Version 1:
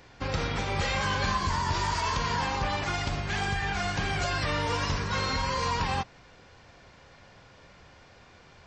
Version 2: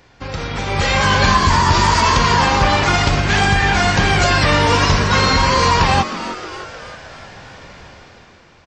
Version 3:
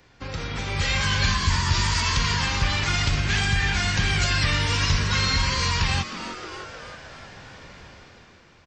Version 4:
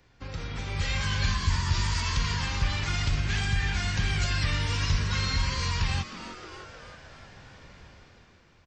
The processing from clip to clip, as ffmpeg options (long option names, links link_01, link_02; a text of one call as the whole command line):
ffmpeg -i in.wav -filter_complex "[0:a]dynaudnorm=framelen=120:gausssize=13:maxgain=12dB,asplit=2[link_01][link_02];[link_02]asplit=6[link_03][link_04][link_05][link_06][link_07][link_08];[link_03]adelay=311,afreqshift=140,volume=-13dB[link_09];[link_04]adelay=622,afreqshift=280,volume=-17.9dB[link_10];[link_05]adelay=933,afreqshift=420,volume=-22.8dB[link_11];[link_06]adelay=1244,afreqshift=560,volume=-27.6dB[link_12];[link_07]adelay=1555,afreqshift=700,volume=-32.5dB[link_13];[link_08]adelay=1866,afreqshift=840,volume=-37.4dB[link_14];[link_09][link_10][link_11][link_12][link_13][link_14]amix=inputs=6:normalize=0[link_15];[link_01][link_15]amix=inputs=2:normalize=0,volume=3dB" out.wav
ffmpeg -i in.wav -filter_complex "[0:a]equalizer=frequency=730:width_type=o:width=1.1:gain=-3.5,acrossover=split=160|1600[link_01][link_02][link_03];[link_02]acompressor=threshold=-29dB:ratio=4[link_04];[link_01][link_04][link_03]amix=inputs=3:normalize=0,volume=-5dB" out.wav
ffmpeg -i in.wav -af "lowshelf=frequency=130:gain=6.5,volume=-7.5dB" out.wav